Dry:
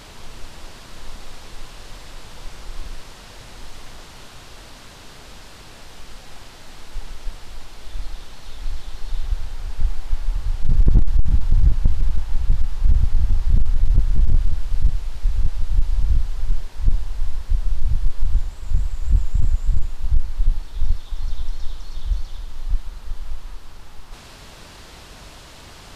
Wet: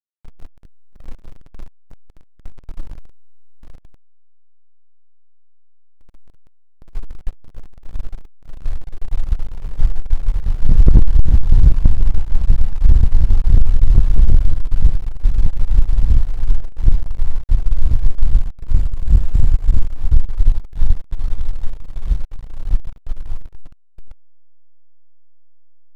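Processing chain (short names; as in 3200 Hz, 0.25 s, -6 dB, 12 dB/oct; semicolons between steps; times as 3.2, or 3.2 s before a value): backlash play -20 dBFS; gain +6 dB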